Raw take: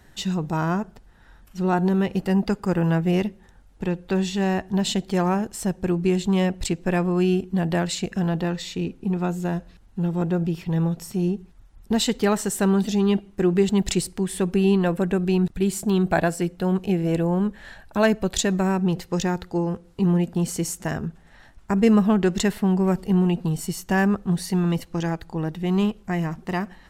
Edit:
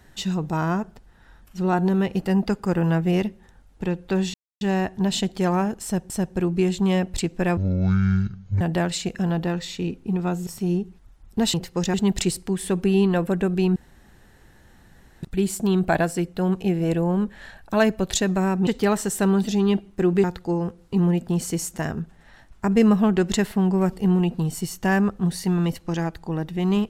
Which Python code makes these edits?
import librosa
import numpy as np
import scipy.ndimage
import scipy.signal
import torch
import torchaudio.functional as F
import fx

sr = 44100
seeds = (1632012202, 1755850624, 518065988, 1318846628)

y = fx.edit(x, sr, fx.insert_silence(at_s=4.34, length_s=0.27),
    fx.repeat(start_s=5.57, length_s=0.26, count=2),
    fx.speed_span(start_s=7.04, length_s=0.54, speed=0.52),
    fx.cut(start_s=9.44, length_s=1.56),
    fx.swap(start_s=12.07, length_s=1.57, other_s=18.9, other_length_s=0.4),
    fx.insert_room_tone(at_s=15.46, length_s=1.47), tone=tone)